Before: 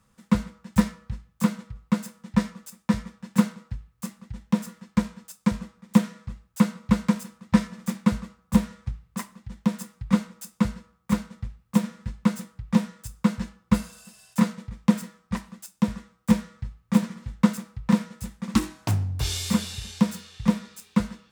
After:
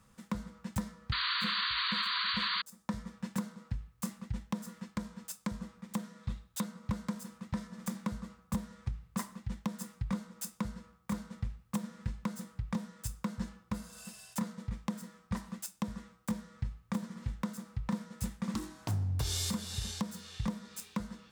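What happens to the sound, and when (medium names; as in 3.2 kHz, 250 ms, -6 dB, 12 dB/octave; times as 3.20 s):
1.12–2.62 s: painted sound noise 960–4700 Hz -14 dBFS
6.23–6.64 s: peaking EQ 3.7 kHz +9.5 dB 0.34 oct
whole clip: dynamic bell 2.5 kHz, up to -7 dB, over -53 dBFS, Q 2.1; compression 5:1, threshold -30 dBFS; peak limiter -24.5 dBFS; trim +1 dB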